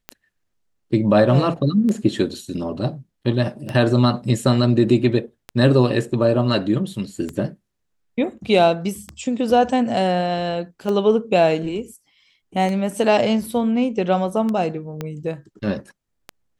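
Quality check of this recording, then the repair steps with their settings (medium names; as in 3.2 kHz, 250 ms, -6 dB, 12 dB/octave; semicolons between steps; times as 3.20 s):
tick 33 1/3 rpm -14 dBFS
15.01 s: pop -14 dBFS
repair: de-click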